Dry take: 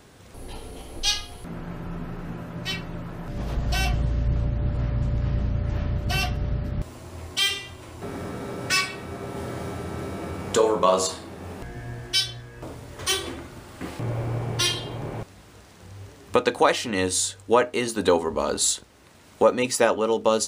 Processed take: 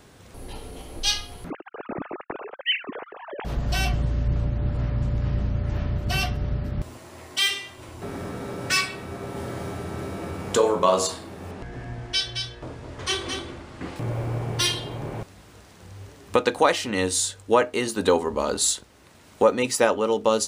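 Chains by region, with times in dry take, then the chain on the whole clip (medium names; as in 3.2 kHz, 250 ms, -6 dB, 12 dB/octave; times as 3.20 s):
1.50–3.45 s: formants replaced by sine waves + gate -41 dBFS, range -36 dB
6.97–7.78 s: high-pass 280 Hz 6 dB/octave + peaking EQ 1.9 kHz +4.5 dB 0.22 oct
11.51–13.96 s: distance through air 67 m + delay 219 ms -6 dB
whole clip: none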